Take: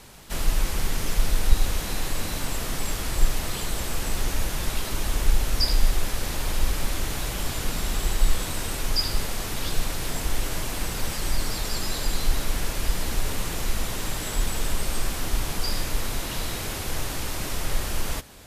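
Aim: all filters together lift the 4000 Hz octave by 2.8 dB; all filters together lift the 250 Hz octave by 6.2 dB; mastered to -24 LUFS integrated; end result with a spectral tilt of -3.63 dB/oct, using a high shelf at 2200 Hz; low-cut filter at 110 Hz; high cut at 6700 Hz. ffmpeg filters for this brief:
-af "highpass=110,lowpass=6.7k,equalizer=f=250:t=o:g=8.5,highshelf=f=2.2k:g=-4.5,equalizer=f=4k:t=o:g=8.5,volume=5.5dB"

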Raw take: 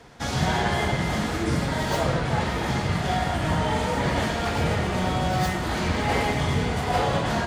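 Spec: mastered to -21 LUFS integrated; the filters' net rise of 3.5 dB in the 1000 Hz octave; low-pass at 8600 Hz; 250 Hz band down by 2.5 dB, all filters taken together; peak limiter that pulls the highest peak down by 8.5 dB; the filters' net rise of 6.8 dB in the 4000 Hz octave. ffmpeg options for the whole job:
-af "lowpass=8.6k,equalizer=f=250:t=o:g=-4,equalizer=f=1k:t=o:g=4.5,equalizer=f=4k:t=o:g=8.5,volume=5dB,alimiter=limit=-12dB:level=0:latency=1"

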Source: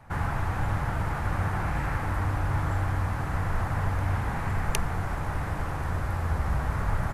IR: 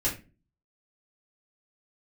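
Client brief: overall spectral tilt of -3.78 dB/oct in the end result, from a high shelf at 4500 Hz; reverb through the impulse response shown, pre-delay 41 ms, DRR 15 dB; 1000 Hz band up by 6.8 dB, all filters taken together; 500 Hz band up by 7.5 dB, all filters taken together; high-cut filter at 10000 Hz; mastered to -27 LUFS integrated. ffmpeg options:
-filter_complex "[0:a]lowpass=10k,equalizer=f=500:t=o:g=7.5,equalizer=f=1k:t=o:g=6.5,highshelf=f=4.5k:g=-6,asplit=2[a][b];[1:a]atrim=start_sample=2205,adelay=41[c];[b][c]afir=irnorm=-1:irlink=0,volume=-22.5dB[d];[a][d]amix=inputs=2:normalize=0,volume=-0.5dB"

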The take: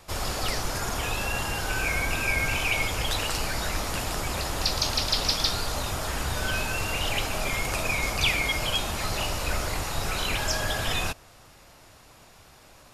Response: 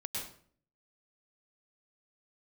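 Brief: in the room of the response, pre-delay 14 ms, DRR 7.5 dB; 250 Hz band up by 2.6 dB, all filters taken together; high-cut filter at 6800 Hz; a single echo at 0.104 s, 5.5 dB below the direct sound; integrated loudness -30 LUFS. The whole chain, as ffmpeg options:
-filter_complex "[0:a]lowpass=6.8k,equalizer=f=250:t=o:g=3.5,aecho=1:1:104:0.531,asplit=2[a][b];[1:a]atrim=start_sample=2205,adelay=14[c];[b][c]afir=irnorm=-1:irlink=0,volume=-9dB[d];[a][d]amix=inputs=2:normalize=0,volume=-4.5dB"

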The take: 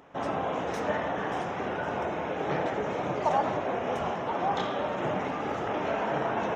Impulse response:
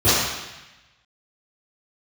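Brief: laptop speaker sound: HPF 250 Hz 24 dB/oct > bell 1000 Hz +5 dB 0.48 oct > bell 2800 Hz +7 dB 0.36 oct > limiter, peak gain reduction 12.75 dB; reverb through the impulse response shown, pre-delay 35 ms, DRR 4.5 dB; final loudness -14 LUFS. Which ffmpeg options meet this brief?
-filter_complex "[0:a]asplit=2[a][b];[1:a]atrim=start_sample=2205,adelay=35[c];[b][c]afir=irnorm=-1:irlink=0,volume=-27dB[d];[a][d]amix=inputs=2:normalize=0,highpass=f=250:w=0.5412,highpass=f=250:w=1.3066,equalizer=f=1k:t=o:w=0.48:g=5,equalizer=f=2.8k:t=o:w=0.36:g=7,volume=19dB,alimiter=limit=-5.5dB:level=0:latency=1"

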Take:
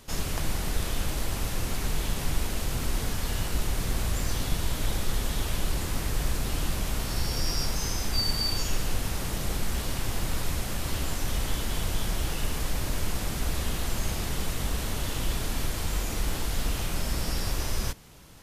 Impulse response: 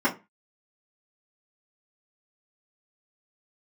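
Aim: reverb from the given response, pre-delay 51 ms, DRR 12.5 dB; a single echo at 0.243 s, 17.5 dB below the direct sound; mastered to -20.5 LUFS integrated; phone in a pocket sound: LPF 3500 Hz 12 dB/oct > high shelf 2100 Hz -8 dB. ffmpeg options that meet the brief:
-filter_complex "[0:a]aecho=1:1:243:0.133,asplit=2[a][b];[1:a]atrim=start_sample=2205,adelay=51[c];[b][c]afir=irnorm=-1:irlink=0,volume=-26.5dB[d];[a][d]amix=inputs=2:normalize=0,lowpass=3.5k,highshelf=f=2.1k:g=-8,volume=13dB"

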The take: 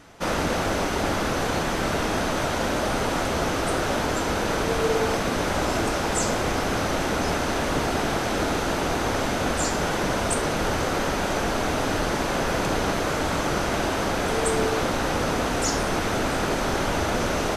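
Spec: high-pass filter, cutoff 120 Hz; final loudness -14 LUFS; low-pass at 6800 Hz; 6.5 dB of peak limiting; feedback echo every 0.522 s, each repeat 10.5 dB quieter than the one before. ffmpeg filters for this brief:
-af "highpass=120,lowpass=6.8k,alimiter=limit=-18dB:level=0:latency=1,aecho=1:1:522|1044|1566:0.299|0.0896|0.0269,volume=12.5dB"

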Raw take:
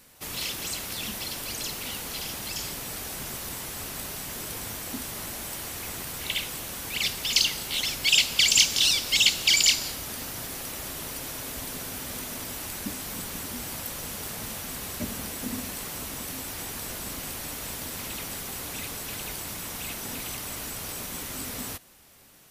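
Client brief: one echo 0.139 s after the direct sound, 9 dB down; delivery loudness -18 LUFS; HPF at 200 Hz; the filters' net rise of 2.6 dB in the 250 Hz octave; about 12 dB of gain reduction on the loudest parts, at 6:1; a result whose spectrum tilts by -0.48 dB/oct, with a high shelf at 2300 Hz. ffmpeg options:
-af "highpass=200,equalizer=f=250:t=o:g=5,highshelf=f=2.3k:g=5,acompressor=threshold=-25dB:ratio=6,aecho=1:1:139:0.355,volume=10dB"

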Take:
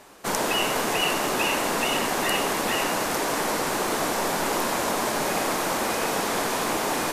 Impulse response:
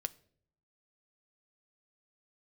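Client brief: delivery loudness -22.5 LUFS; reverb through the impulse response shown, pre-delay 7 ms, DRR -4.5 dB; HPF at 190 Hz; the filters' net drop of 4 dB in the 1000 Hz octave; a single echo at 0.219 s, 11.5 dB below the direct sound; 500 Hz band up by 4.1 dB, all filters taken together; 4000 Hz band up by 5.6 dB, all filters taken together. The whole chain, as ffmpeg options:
-filter_complex "[0:a]highpass=190,equalizer=f=500:t=o:g=7.5,equalizer=f=1k:t=o:g=-8.5,equalizer=f=4k:t=o:g=8.5,aecho=1:1:219:0.266,asplit=2[a][b];[1:a]atrim=start_sample=2205,adelay=7[c];[b][c]afir=irnorm=-1:irlink=0,volume=5dB[d];[a][d]amix=inputs=2:normalize=0,volume=-6dB"

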